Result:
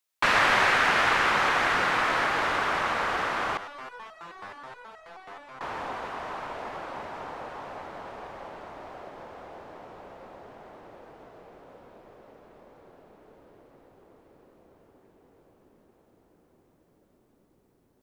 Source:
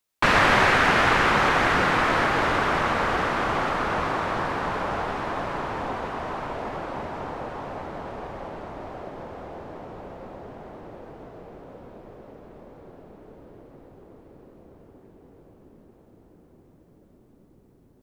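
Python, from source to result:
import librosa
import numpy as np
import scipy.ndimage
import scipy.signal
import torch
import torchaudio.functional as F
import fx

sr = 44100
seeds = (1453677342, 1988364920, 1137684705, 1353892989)

y = fx.low_shelf(x, sr, hz=430.0, db=-11.5)
y = fx.resonator_held(y, sr, hz=9.4, low_hz=100.0, high_hz=640.0, at=(3.57, 5.61))
y = y * 10.0 ** (-1.5 / 20.0)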